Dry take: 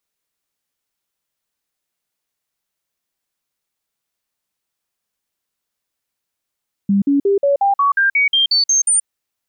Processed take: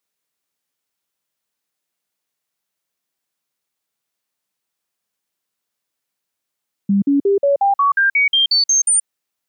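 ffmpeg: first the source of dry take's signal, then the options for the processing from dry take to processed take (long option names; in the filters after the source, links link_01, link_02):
-f lavfi -i "aevalsrc='0.282*clip(min(mod(t,0.18),0.13-mod(t,0.18))/0.005,0,1)*sin(2*PI*199*pow(2,floor(t/0.18)/2)*mod(t,0.18))':duration=2.16:sample_rate=44100"
-af "highpass=110"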